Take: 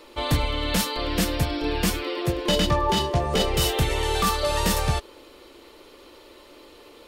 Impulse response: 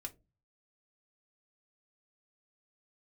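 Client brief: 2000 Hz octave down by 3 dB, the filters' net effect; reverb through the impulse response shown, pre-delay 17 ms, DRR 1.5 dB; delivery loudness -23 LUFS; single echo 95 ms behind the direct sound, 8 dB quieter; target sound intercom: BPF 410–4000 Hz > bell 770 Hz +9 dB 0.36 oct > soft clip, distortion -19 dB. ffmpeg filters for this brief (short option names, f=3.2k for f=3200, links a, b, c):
-filter_complex "[0:a]equalizer=f=2k:t=o:g=-3.5,aecho=1:1:95:0.398,asplit=2[a][b];[1:a]atrim=start_sample=2205,adelay=17[c];[b][c]afir=irnorm=-1:irlink=0,volume=2dB[d];[a][d]amix=inputs=2:normalize=0,highpass=410,lowpass=4k,equalizer=f=770:t=o:w=0.36:g=9,asoftclip=threshold=-13.5dB,volume=0.5dB"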